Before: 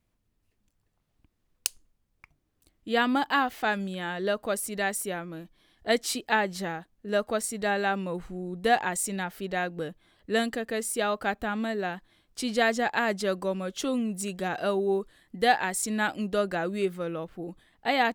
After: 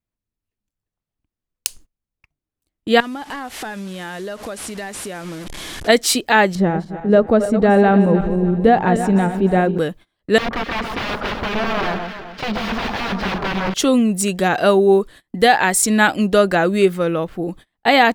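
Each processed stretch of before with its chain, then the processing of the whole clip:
3.00–5.88 s: one-bit delta coder 64 kbps, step -38.5 dBFS + compression, threshold -40 dBFS
6.55–9.78 s: backward echo that repeats 151 ms, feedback 62%, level -10 dB + low-pass 1.8 kHz 6 dB/octave + tilt shelf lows +7 dB, about 670 Hz
10.38–13.74 s: integer overflow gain 28 dB + distance through air 310 m + echo whose repeats swap between lows and highs 128 ms, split 1.4 kHz, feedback 63%, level -4 dB
whole clip: gate -50 dBFS, range -25 dB; loudness maximiser +14.5 dB; trim -1 dB

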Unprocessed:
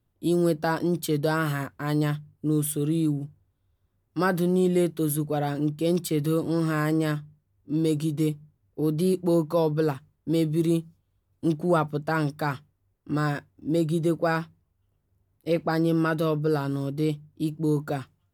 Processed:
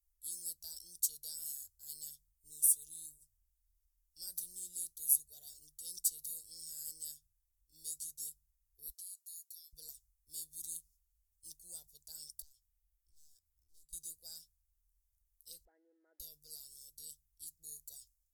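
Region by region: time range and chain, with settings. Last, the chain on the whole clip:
8.89–9.73 s: high-pass 1.5 kHz 24 dB/octave + compression, threshold -44 dBFS
12.42–13.93 s: peaking EQ 7 kHz -3.5 dB 2.7 oct + hard clipper -24 dBFS + compression 5:1, threshold -44 dBFS
15.65–16.20 s: jump at every zero crossing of -35.5 dBFS + brick-wall FIR band-pass 210–2300 Hz
whole clip: inverse Chebyshev band-stop 120–2500 Hz, stop band 50 dB; bass shelf 95 Hz -5.5 dB; trim +3.5 dB

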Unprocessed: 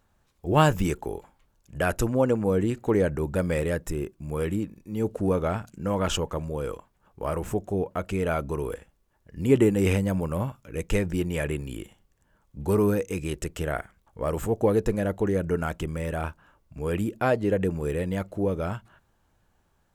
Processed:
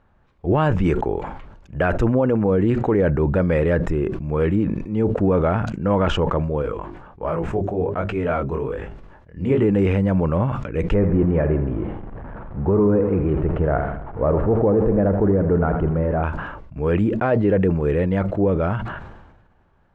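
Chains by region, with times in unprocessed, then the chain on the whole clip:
6.62–9.64 s: hum notches 50/100/150/200/250/300/350/400 Hz + chorus 1.3 Hz, delay 18 ms, depth 5.7 ms
10.94–16.23 s: jump at every zero crossing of -36 dBFS + low-pass 1.1 kHz + feedback delay 82 ms, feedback 53%, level -11 dB
whole clip: low-pass 2.1 kHz 12 dB/octave; peak limiter -18 dBFS; decay stretcher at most 47 dB/s; trim +8 dB

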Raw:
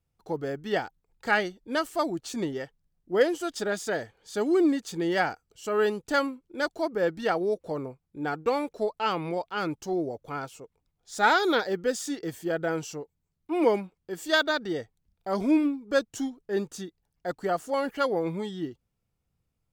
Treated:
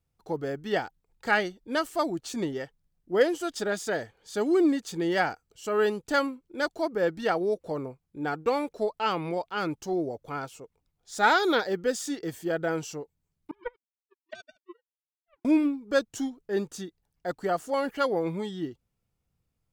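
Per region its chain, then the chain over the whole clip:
13.51–15.45 s: formants replaced by sine waves + power-law waveshaper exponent 3 + compression 2:1, threshold -37 dBFS
whole clip: none

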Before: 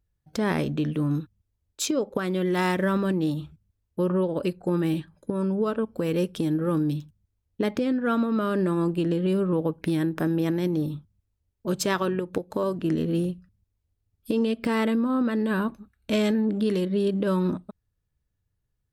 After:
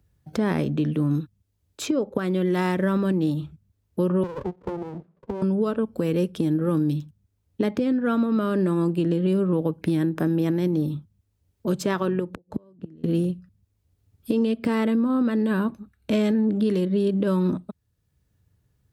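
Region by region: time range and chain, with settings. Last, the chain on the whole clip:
4.23–5.42 s: Butterworth band-pass 470 Hz, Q 0.94 + static phaser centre 460 Hz, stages 8 + sliding maximum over 33 samples
12.34–13.04 s: tilt EQ -2.5 dB/octave + inverted gate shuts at -18 dBFS, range -35 dB
whole clip: high-pass 71 Hz; bass shelf 480 Hz +5.5 dB; three bands compressed up and down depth 40%; trim -2 dB

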